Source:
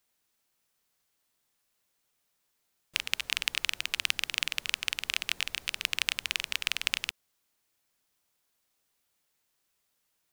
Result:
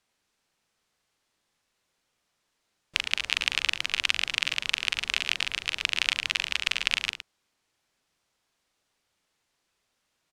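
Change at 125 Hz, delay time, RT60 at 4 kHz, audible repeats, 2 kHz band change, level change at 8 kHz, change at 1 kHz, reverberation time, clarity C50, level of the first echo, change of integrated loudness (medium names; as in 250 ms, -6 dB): +5.5 dB, 41 ms, no reverb, 2, +4.5 dB, 0.0 dB, +5.0 dB, no reverb, no reverb, -8.0 dB, +4.0 dB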